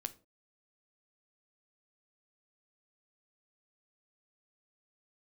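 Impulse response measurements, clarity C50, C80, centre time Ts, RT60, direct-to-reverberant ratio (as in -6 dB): 18.0 dB, 24.0 dB, 3 ms, no single decay rate, 11.0 dB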